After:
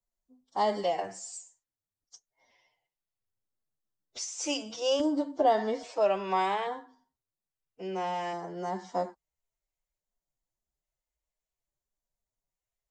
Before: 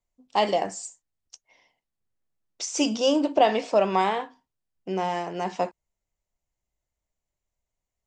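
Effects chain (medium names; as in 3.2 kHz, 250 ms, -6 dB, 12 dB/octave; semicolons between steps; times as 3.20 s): LFO notch square 0.96 Hz 240–2600 Hz; time stretch by phase-locked vocoder 1.6×; trim -5 dB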